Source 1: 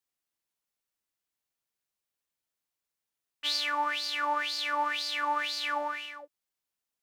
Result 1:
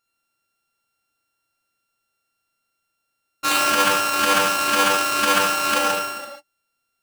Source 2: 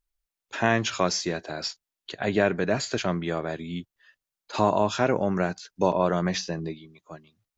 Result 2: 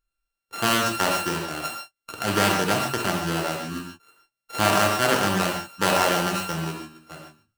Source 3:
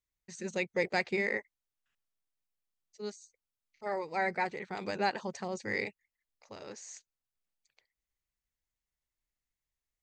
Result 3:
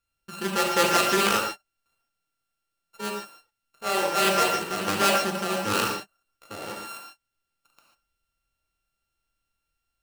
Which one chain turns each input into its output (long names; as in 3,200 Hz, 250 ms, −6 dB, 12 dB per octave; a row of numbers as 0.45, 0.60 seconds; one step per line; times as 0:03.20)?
samples sorted by size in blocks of 32 samples
reverb whose tail is shaped and stops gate 170 ms flat, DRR −0.5 dB
highs frequency-modulated by the lows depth 0.21 ms
normalise the peak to −6 dBFS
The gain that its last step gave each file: +9.5, −0.5, +7.5 decibels